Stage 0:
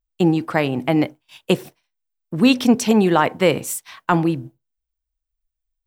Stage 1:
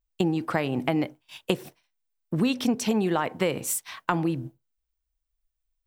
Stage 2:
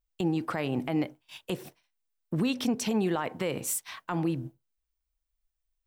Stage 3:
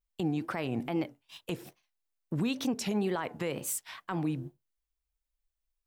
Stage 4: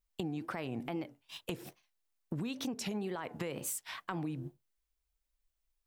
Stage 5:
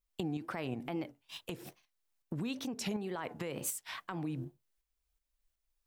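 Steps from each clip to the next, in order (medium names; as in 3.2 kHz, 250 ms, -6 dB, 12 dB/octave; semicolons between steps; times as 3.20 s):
compression 5:1, threshold -22 dBFS, peak gain reduction 12 dB
peak limiter -17.5 dBFS, peak gain reduction 10.5 dB; trim -2 dB
wow and flutter 130 cents; trim -3 dB
compression, threshold -37 dBFS, peak gain reduction 10.5 dB; trim +2 dB
tremolo saw up 2.7 Hz, depth 50%; trim +2.5 dB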